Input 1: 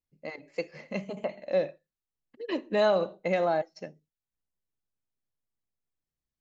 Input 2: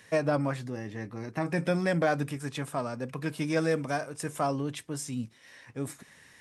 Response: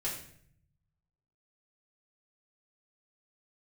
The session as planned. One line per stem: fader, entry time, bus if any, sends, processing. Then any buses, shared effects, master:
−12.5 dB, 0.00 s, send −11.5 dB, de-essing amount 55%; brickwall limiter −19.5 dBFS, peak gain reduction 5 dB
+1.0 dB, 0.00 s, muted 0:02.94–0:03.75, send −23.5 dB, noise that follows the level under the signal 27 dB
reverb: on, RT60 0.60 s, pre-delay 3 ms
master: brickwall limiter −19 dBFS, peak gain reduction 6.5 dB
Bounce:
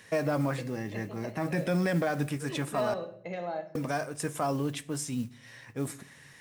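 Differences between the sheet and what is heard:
stem 1: missing brickwall limiter −19.5 dBFS, peak gain reduction 5 dB
reverb return +6.0 dB

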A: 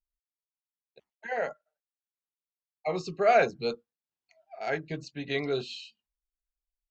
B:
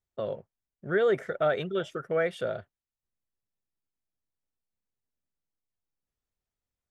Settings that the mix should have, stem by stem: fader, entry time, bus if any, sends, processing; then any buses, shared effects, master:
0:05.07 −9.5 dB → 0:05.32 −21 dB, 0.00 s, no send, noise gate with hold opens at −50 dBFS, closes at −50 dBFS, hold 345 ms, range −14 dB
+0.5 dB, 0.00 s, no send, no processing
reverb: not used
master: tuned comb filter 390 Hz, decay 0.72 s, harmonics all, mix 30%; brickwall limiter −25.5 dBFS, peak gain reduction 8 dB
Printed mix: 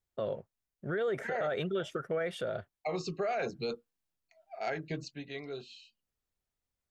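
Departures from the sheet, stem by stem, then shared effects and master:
stem A −9.5 dB → 0.0 dB
master: missing tuned comb filter 390 Hz, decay 0.72 s, harmonics all, mix 30%

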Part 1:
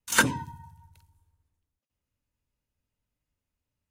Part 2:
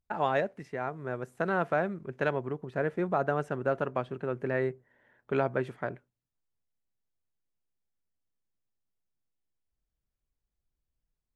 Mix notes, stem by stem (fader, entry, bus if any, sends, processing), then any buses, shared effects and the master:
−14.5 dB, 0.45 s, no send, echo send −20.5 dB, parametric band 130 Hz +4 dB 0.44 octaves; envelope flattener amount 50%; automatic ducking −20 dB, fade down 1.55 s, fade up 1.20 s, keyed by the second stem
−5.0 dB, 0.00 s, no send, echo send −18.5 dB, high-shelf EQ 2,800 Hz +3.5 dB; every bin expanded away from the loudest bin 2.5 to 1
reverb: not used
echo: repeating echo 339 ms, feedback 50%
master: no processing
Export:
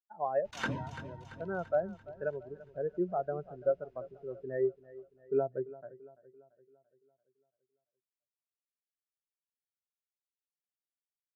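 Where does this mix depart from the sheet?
stem 1 −14.5 dB → −4.5 dB
master: extra high-frequency loss of the air 210 metres

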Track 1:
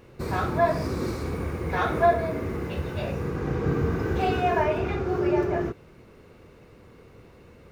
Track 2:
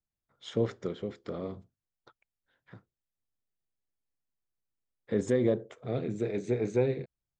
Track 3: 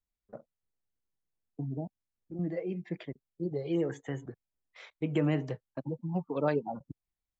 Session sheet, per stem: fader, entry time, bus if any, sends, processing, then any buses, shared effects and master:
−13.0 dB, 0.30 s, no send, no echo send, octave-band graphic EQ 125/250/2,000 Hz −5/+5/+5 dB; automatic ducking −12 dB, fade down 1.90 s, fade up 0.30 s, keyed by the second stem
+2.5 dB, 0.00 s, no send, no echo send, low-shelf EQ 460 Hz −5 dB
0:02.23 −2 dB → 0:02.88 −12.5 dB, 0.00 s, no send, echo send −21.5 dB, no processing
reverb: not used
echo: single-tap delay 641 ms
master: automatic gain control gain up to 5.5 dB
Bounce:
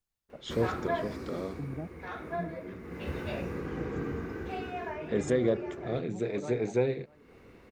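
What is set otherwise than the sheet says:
stem 1 −13.0 dB → −5.0 dB
master: missing automatic gain control gain up to 5.5 dB

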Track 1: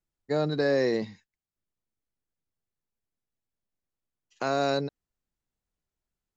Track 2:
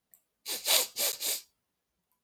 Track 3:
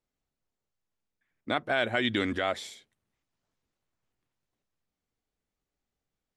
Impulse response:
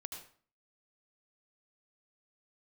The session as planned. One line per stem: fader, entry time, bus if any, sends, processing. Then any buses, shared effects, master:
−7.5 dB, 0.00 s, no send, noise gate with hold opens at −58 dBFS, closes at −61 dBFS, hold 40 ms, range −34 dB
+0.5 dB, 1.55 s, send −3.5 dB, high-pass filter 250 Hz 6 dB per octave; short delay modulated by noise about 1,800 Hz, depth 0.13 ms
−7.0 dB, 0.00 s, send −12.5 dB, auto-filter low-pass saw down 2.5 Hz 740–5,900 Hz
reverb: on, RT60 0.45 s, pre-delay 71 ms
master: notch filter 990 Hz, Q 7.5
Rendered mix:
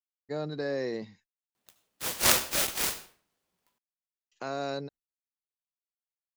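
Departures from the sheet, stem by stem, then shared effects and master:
stem 3: muted
master: missing notch filter 990 Hz, Q 7.5

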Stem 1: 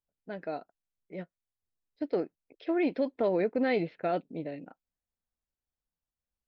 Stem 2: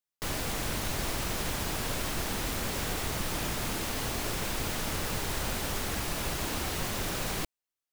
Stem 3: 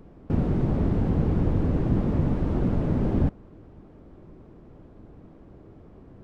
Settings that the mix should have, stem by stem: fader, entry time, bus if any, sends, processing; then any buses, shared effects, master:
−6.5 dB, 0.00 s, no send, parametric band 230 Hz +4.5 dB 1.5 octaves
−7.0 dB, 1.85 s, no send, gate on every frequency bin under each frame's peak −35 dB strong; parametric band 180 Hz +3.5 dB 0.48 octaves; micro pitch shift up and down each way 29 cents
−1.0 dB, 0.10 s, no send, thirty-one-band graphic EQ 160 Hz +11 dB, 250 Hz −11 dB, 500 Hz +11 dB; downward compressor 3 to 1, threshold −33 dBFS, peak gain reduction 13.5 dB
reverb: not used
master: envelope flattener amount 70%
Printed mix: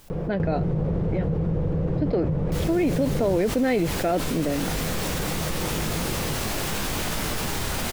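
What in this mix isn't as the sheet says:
stem 1 −6.5 dB → +1.0 dB
stem 2: entry 1.85 s → 2.30 s

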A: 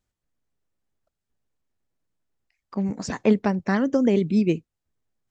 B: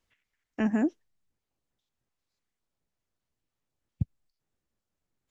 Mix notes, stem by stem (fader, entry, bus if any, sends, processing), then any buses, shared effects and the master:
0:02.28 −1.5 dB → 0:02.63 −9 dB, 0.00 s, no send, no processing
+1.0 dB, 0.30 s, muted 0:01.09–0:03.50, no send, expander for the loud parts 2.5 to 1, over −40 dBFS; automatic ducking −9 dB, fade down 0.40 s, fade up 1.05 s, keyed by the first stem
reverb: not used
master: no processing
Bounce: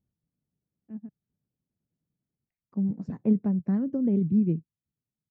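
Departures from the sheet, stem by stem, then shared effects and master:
stem A −1.5 dB → +8.5 dB
master: extra resonant band-pass 160 Hz, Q 1.8

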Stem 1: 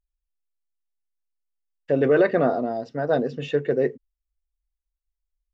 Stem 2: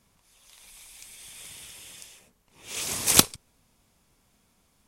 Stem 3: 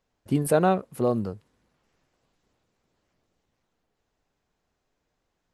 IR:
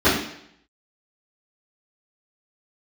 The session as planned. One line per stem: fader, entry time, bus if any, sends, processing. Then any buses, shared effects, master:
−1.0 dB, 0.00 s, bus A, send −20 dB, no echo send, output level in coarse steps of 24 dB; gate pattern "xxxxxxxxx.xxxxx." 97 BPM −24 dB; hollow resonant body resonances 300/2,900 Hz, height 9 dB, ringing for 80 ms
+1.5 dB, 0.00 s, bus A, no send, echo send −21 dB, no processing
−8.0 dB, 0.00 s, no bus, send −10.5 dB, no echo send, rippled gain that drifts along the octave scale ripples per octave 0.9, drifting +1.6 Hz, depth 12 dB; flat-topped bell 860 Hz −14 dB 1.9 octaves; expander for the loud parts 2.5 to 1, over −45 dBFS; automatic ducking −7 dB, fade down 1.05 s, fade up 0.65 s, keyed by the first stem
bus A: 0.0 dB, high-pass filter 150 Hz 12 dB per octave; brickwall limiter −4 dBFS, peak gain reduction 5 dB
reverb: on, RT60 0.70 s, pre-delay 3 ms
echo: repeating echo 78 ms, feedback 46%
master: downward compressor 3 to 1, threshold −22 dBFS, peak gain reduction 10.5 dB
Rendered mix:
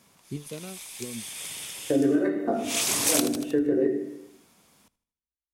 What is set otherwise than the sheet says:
stem 2 +1.5 dB → +7.5 dB
stem 3: send off

